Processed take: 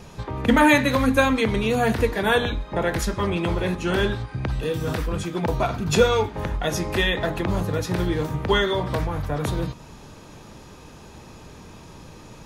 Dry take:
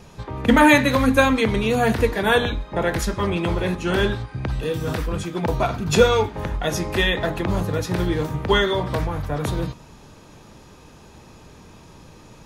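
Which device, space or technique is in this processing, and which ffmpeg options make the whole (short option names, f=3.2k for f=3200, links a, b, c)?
parallel compression: -filter_complex "[0:a]asplit=2[a][b];[b]acompressor=threshold=-30dB:ratio=6,volume=-0.5dB[c];[a][c]amix=inputs=2:normalize=0,volume=-3.5dB"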